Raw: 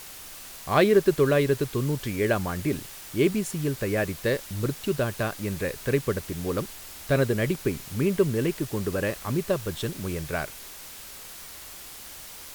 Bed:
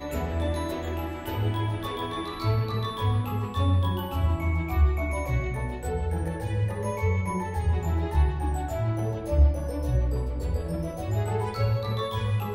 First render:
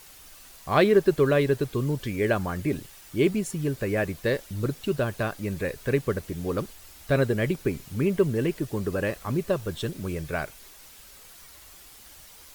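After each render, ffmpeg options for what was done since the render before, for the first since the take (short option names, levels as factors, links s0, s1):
-af "afftdn=nr=8:nf=-43"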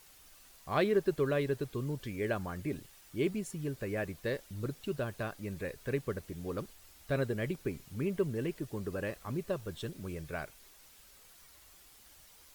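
-af "volume=0.335"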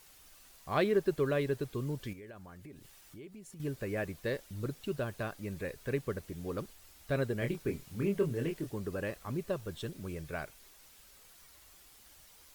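-filter_complex "[0:a]asettb=1/sr,asplit=3[s0][s1][s2];[s0]atrim=end=2.134[s3];[s1]atrim=start=2.13:end=3.6,asetpts=PTS-STARTPTS,afade=t=in:d=0.004:c=qsin,afade=t=out:st=1.466:d=0.004:c=qsin,acompressor=threshold=0.00355:ratio=4:attack=3.2:release=140:knee=1:detection=peak[s4];[s2]atrim=start=3.596[s5];[s3][s4]acrossfade=d=0.004:c1=hsin:c2=qsin[s6];[s6][s5]acrossfade=d=0.004:c1=qsin:c2=hsin,asettb=1/sr,asplit=3[s7][s8][s9];[s7]atrim=end=7.394[s10];[s8]atrim=start=7.39:end=8.71,asetpts=PTS-STARTPTS,afade=t=in:d=0.004:c=qsin,afade=t=out:st=1.316:d=0.004:c=qsin,asplit=2[s11][s12];[s12]adelay=25,volume=0.562[s13];[s11][s13]amix=inputs=2:normalize=0,atrim=end_sample=58212[s14];[s9]atrim=start=8.706[s15];[s10][s14]acrossfade=d=0.004:c1=hsin:c2=qsin[s16];[s16][s15]acrossfade=d=0.004:c1=qsin:c2=hsin"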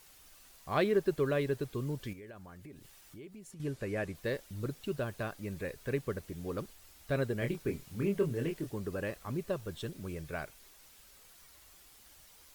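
-filter_complex "[0:a]asettb=1/sr,asplit=3[s0][s1][s2];[s0]atrim=end=3.524[s3];[s1]atrim=start=3.52:end=4.15,asetpts=PTS-STARTPTS,afade=t=in:d=0.004:c=qsin,afade=t=out:st=0.626:d=0.004:c=qsin,lowpass=11000[s4];[s2]atrim=start=4.146[s5];[s3][s4]acrossfade=d=0.004:c1=hsin:c2=qsin[s6];[s6][s5]acrossfade=d=0.004:c1=qsin:c2=hsin"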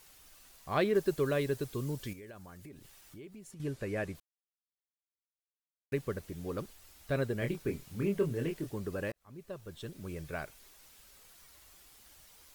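-filter_complex "[0:a]asettb=1/sr,asplit=3[s0][s1][s2];[s0]atrim=end=0.954[s3];[s1]atrim=start=0.95:end=2.69,asetpts=PTS-STARTPTS,afade=t=in:d=0.004:c=qsin,afade=t=out:st=1.736:d=0.004:c=qsin,bass=f=250:g=0,treble=f=4000:g=6[s4];[s2]atrim=start=2.686[s5];[s3][s4]acrossfade=d=0.004:c1=hsin:c2=qsin[s6];[s6][s5]acrossfade=d=0.004:c1=qsin:c2=hsin,asplit=4[s7][s8][s9][s10];[s7]atrim=end=4.2,asetpts=PTS-STARTPTS,afade=t=out:st=4.196:d=0.004:c=hsin[s11];[s8]atrim=start=4.2:end=5.92,asetpts=PTS-STARTPTS,volume=0[s12];[s9]atrim=start=5.92:end=9.12,asetpts=PTS-STARTPTS,afade=t=in:d=0.004:c=hsin,afade=t=out:st=3.196:d=0.004:c=hsin[s13];[s10]atrim=start=9.12,asetpts=PTS-STARTPTS,afade=t=in:d=1.09[s14];[s11][s12][s13][s14]concat=n=4:v=0:a=1"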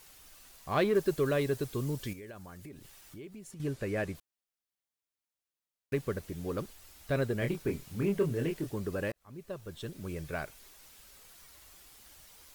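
-filter_complex "[0:a]asplit=2[s0][s1];[s1]asoftclip=type=hard:threshold=0.0266,volume=0.355[s2];[s0][s2]amix=inputs=2:normalize=0,acrusher=bits=9:mode=log:mix=0:aa=0.000001"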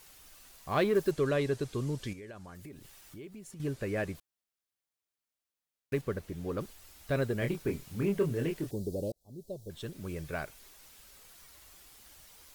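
-filter_complex "[0:a]asettb=1/sr,asplit=3[s0][s1][s2];[s0]atrim=end=1.114[s3];[s1]atrim=start=1.11:end=2.55,asetpts=PTS-STARTPTS,afade=t=in:d=0.004:c=qsin,afade=t=out:st=1.436:d=0.004:c=qsin,lowpass=8500[s4];[s2]atrim=start=2.546[s5];[s3][s4]acrossfade=d=0.004:c1=hsin:c2=qsin[s6];[s6][s5]acrossfade=d=0.004:c1=qsin:c2=hsin,asettb=1/sr,asplit=3[s7][s8][s9];[s7]atrim=end=6.014[s10];[s8]atrim=start=6.01:end=6.61,asetpts=PTS-STARTPTS,afade=t=in:d=0.004:c=qsin,afade=t=out:st=0.596:d=0.004:c=qsin,highshelf=f=4200:g=-6[s11];[s9]atrim=start=6.606[s12];[s10][s11]acrossfade=d=0.004:c1=hsin:c2=qsin[s13];[s13][s12]acrossfade=d=0.004:c1=qsin:c2=hsin,asettb=1/sr,asplit=3[s14][s15][s16];[s14]atrim=end=8.714[s17];[s15]atrim=start=8.71:end=9.7,asetpts=PTS-STARTPTS,afade=t=in:d=0.004:c=qsin,afade=t=out:st=0.986:d=0.004:c=qsin,asuperstop=centerf=1700:order=8:qfactor=0.54[s18];[s16]atrim=start=9.696[s19];[s17][s18]acrossfade=d=0.004:c1=hsin:c2=qsin[s20];[s20][s19]acrossfade=d=0.004:c1=qsin:c2=hsin"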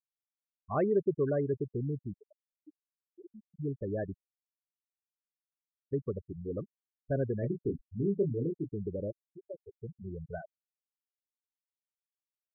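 -af "afftfilt=real='re*gte(hypot(re,im),0.0631)':imag='im*gte(hypot(re,im),0.0631)':win_size=1024:overlap=0.75,equalizer=f=2200:t=o:w=1.1:g=-11.5"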